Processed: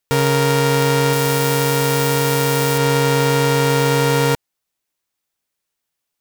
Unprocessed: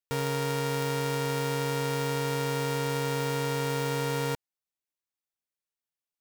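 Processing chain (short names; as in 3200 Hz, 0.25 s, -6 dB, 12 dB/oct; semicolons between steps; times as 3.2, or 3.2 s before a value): 1.13–2.78 high shelf 8100 Hz +8.5 dB; in parallel at +0.5 dB: limiter -21 dBFS, peak gain reduction 7 dB; on the sum: gain +7.5 dB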